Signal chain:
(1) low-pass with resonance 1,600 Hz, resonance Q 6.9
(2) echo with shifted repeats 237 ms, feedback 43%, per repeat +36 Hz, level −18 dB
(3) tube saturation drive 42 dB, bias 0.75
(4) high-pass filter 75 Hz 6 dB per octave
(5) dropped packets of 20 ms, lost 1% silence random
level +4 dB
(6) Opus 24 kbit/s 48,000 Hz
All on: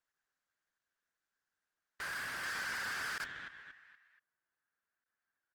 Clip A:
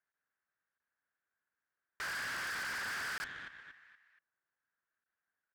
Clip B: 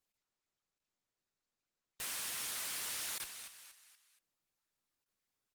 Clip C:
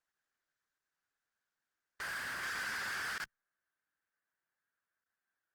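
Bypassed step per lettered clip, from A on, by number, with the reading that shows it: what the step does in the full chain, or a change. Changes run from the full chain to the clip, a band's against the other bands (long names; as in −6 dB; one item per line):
6, change in crest factor −5.0 dB
1, 8 kHz band +14.5 dB
2, change in momentary loudness spread −7 LU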